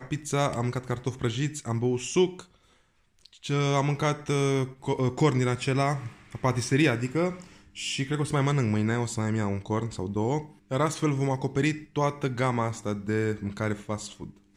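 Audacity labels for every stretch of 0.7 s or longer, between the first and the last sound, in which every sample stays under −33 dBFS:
2.410000	3.260000	silence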